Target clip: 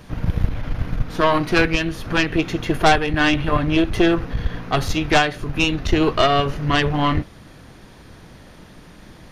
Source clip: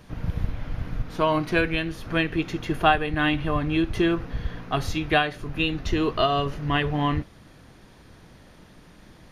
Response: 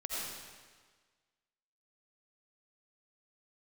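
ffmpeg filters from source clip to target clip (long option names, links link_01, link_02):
-af "aeval=exprs='0.501*(cos(1*acos(clip(val(0)/0.501,-1,1)))-cos(1*PI/2))+0.2*(cos(4*acos(clip(val(0)/0.501,-1,1)))-cos(4*PI/2))+0.112*(cos(5*acos(clip(val(0)/0.501,-1,1)))-cos(5*PI/2))':channel_layout=same"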